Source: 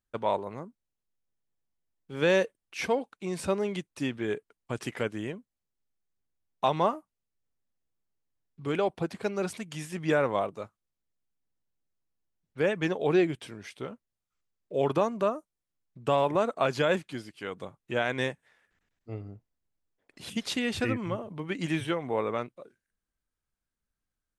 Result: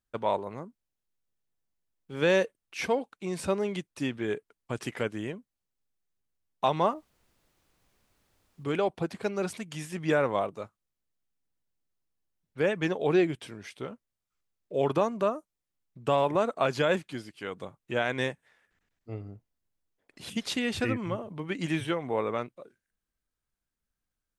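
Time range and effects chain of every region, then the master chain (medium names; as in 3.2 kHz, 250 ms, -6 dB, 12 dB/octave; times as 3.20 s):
6.93–8.63 s: low-pass 1 kHz + added noise pink -71 dBFS
whole clip: none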